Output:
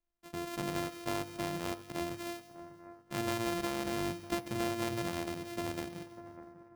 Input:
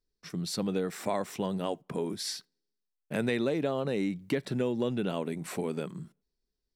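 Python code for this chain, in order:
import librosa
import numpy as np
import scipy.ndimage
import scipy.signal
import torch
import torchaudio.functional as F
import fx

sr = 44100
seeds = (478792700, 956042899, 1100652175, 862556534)

y = np.r_[np.sort(x[:len(x) // 128 * 128].reshape(-1, 128), axis=1).ravel(), x[len(x) // 128 * 128:]]
y = fx.comb_fb(y, sr, f0_hz=99.0, decay_s=1.2, harmonics='odd', damping=0.0, mix_pct=60)
y = fx.echo_split(y, sr, split_hz=1900.0, low_ms=598, high_ms=161, feedback_pct=52, wet_db=-15.5)
y = F.gain(torch.from_numpy(y), 2.0).numpy()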